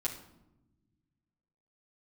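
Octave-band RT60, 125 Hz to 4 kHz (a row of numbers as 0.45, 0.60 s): 2.4, 2.0, 1.0, 0.85, 0.60, 0.55 s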